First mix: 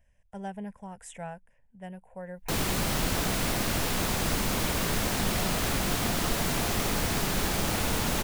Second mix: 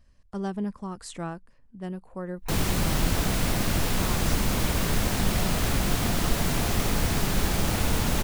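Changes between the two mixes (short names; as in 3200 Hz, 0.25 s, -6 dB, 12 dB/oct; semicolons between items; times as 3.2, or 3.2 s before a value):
speech: remove fixed phaser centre 1200 Hz, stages 6; master: add low shelf 170 Hz +7.5 dB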